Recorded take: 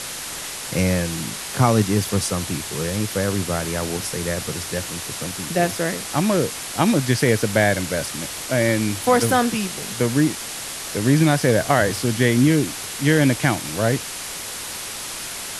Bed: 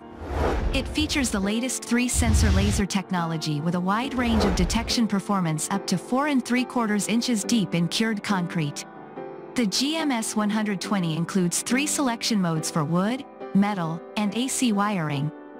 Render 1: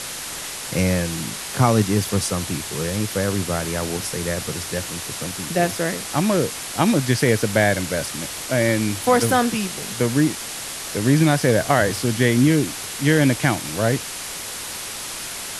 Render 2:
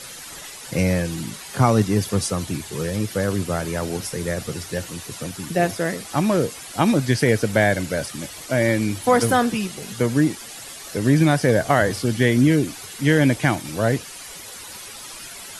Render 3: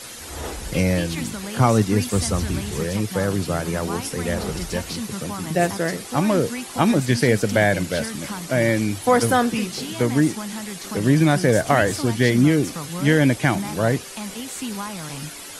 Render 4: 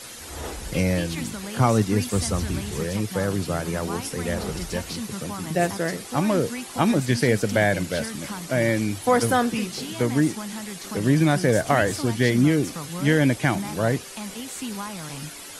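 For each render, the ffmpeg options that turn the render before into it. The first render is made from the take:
-af anull
-af "afftdn=nr=11:nf=-32"
-filter_complex "[1:a]volume=-8dB[a];[0:a][a]amix=inputs=2:normalize=0"
-af "volume=-2.5dB"

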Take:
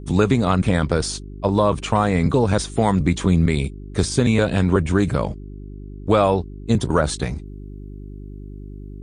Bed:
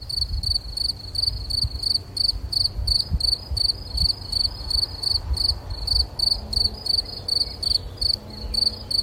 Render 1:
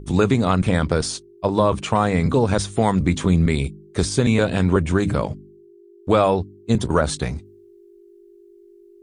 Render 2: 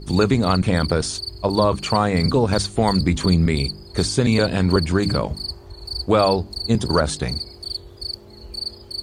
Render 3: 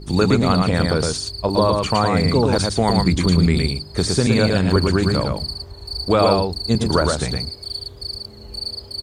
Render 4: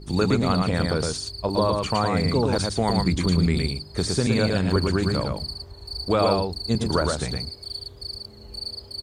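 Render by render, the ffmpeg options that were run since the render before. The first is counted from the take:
-af "bandreject=f=50:t=h:w=4,bandreject=f=100:t=h:w=4,bandreject=f=150:t=h:w=4,bandreject=f=200:t=h:w=4,bandreject=f=250:t=h:w=4,bandreject=f=300:t=h:w=4"
-filter_complex "[1:a]volume=-8dB[a];[0:a][a]amix=inputs=2:normalize=0"
-af "aecho=1:1:113:0.668"
-af "volume=-5dB"

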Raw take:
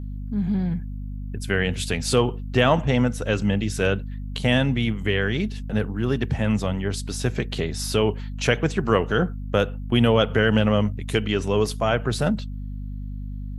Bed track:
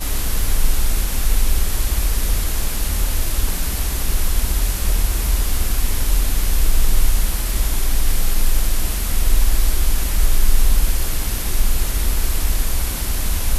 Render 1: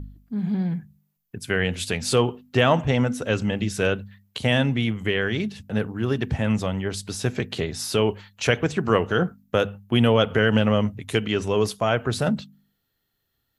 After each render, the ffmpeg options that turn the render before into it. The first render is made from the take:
-af "bandreject=f=50:t=h:w=4,bandreject=f=100:t=h:w=4,bandreject=f=150:t=h:w=4,bandreject=f=200:t=h:w=4,bandreject=f=250:t=h:w=4"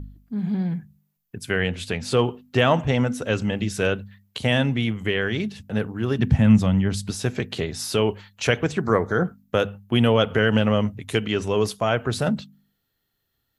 -filter_complex "[0:a]asettb=1/sr,asplit=3[a][b][c];[a]atrim=end=1.694[d];[b]atrim=start=1.69:end=2.19,asetpts=PTS-STARTPTS,afade=t=in:d=0.004:c=qsin,afade=t=out:st=0.496:d=0.004:c=qsin,highshelf=f=5k:g=-10.5[e];[c]atrim=start=2.186[f];[d][e]acrossfade=d=0.004:c1=hsin:c2=qsin[g];[g][f]acrossfade=d=0.004:c1=qsin:c2=hsin,asettb=1/sr,asplit=3[h][i][j];[h]atrim=end=6.194[k];[i]atrim=start=6.19:end=7.11,asetpts=PTS-STARTPTS,afade=t=in:d=0.004:c=qsin,afade=t=out:st=0.916:d=0.004:c=qsin,lowshelf=f=290:t=q:w=1.5:g=7[l];[j]atrim=start=7.106[m];[k][l]acrossfade=d=0.004:c1=hsin:c2=qsin[n];[n][m]acrossfade=d=0.004:c1=qsin:c2=hsin,asettb=1/sr,asplit=3[o][p][q];[o]atrim=end=8.814[r];[p]atrim=start=8.81:end=9.25,asetpts=PTS-STARTPTS,afade=t=in:d=0.004:c=qsin,afade=t=out:st=0.436:d=0.004:c=qsin,asuperstop=centerf=2800:order=4:qfactor=1.8[s];[q]atrim=start=9.246[t];[r][s]acrossfade=d=0.004:c1=hsin:c2=qsin[u];[u][t]acrossfade=d=0.004:c1=qsin:c2=hsin"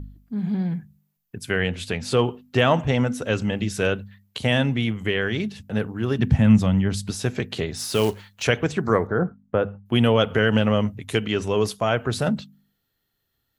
-filter_complex "[0:a]asettb=1/sr,asplit=3[a][b][c];[a]atrim=end=7.774[d];[b]atrim=start=7.77:end=8.43,asetpts=PTS-STARTPTS,afade=t=in:d=0.004:c=qsin,afade=t=out:st=0.656:d=0.004:c=qsin,acrusher=bits=4:mode=log:mix=0:aa=0.000001[e];[c]atrim=start=8.426[f];[d][e]acrossfade=d=0.004:c1=hsin:c2=qsin[g];[g][f]acrossfade=d=0.004:c1=qsin:c2=hsin,asettb=1/sr,asplit=3[h][i][j];[h]atrim=end=9.074[k];[i]atrim=start=9.07:end=9.86,asetpts=PTS-STARTPTS,afade=t=in:d=0.004:c=qsin,afade=t=out:st=0.786:d=0.004:c=qsin,lowpass=1.4k[l];[j]atrim=start=9.856[m];[k][l]acrossfade=d=0.004:c1=hsin:c2=qsin[n];[n][m]acrossfade=d=0.004:c1=qsin:c2=hsin"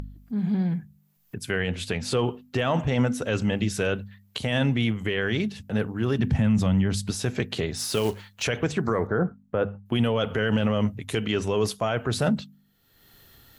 -af "alimiter=limit=-14dB:level=0:latency=1:release=17,acompressor=mode=upward:threshold=-35dB:ratio=2.5"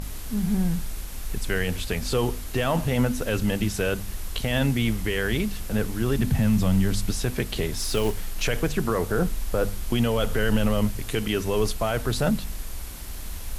-filter_complex "[1:a]volume=-14.5dB[a];[0:a][a]amix=inputs=2:normalize=0"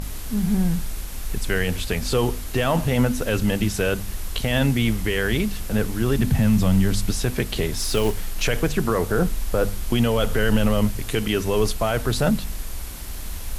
-af "volume=3dB"

